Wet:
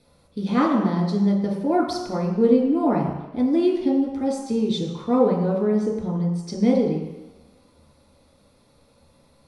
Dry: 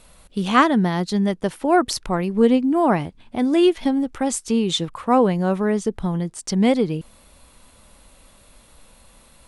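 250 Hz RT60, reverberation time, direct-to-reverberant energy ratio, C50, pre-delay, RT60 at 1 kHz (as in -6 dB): 1.0 s, 1.1 s, -3.5 dB, 3.0 dB, 3 ms, 1.2 s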